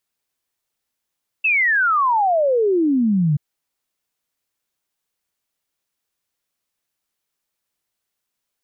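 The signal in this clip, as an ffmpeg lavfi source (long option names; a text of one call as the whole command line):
ffmpeg -f lavfi -i "aevalsrc='0.2*clip(min(t,1.93-t)/0.01,0,1)*sin(2*PI*2700*1.93/log(140/2700)*(exp(log(140/2700)*t/1.93)-1))':duration=1.93:sample_rate=44100" out.wav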